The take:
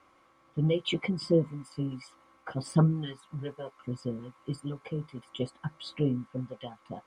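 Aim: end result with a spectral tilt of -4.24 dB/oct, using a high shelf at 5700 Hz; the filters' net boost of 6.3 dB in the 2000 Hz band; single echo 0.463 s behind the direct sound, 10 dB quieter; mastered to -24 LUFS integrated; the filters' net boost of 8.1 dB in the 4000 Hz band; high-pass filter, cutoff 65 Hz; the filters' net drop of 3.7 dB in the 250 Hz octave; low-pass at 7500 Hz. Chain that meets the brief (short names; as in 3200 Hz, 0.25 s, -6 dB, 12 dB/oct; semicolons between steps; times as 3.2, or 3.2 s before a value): HPF 65 Hz; LPF 7500 Hz; bell 250 Hz -6.5 dB; bell 2000 Hz +4.5 dB; bell 4000 Hz +8.5 dB; high shelf 5700 Hz +3.5 dB; echo 0.463 s -10 dB; gain +8.5 dB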